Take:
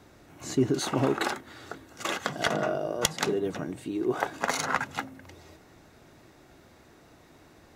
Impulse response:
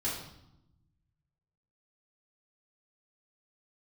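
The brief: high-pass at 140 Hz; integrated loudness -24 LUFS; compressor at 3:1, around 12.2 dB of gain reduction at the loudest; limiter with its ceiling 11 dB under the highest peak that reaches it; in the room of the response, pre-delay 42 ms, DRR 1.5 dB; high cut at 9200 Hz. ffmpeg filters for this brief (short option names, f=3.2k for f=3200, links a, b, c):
-filter_complex "[0:a]highpass=140,lowpass=9.2k,acompressor=threshold=-38dB:ratio=3,alimiter=level_in=5.5dB:limit=-24dB:level=0:latency=1,volume=-5.5dB,asplit=2[a][b];[1:a]atrim=start_sample=2205,adelay=42[c];[b][c]afir=irnorm=-1:irlink=0,volume=-6.5dB[d];[a][d]amix=inputs=2:normalize=0,volume=15dB"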